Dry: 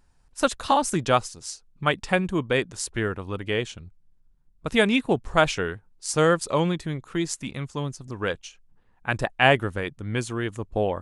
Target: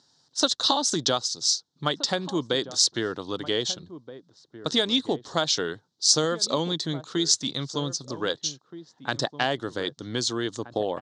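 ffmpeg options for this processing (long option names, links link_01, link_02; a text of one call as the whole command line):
ffmpeg -i in.wav -filter_complex "[0:a]aemphasis=mode=reproduction:type=75fm,acompressor=threshold=-23dB:ratio=6,aexciter=amount=10.3:drive=9:freq=3800,highpass=frequency=140:width=0.5412,highpass=frequency=140:width=1.3066,equalizer=frequency=200:width_type=q:width=4:gain=-7,equalizer=frequency=290:width_type=q:width=4:gain=3,equalizer=frequency=2500:width_type=q:width=4:gain=-5,equalizer=frequency=3800:width_type=q:width=4:gain=5,lowpass=frequency=5600:width=0.5412,lowpass=frequency=5600:width=1.3066,asplit=2[link_01][link_02];[link_02]adelay=1574,volume=-14dB,highshelf=frequency=4000:gain=-35.4[link_03];[link_01][link_03]amix=inputs=2:normalize=0,volume=1dB" out.wav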